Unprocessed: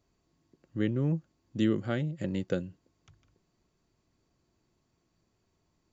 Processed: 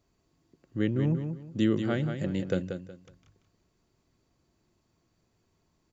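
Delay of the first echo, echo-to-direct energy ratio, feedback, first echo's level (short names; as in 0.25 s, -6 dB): 0.184 s, -7.0 dB, 27%, -7.5 dB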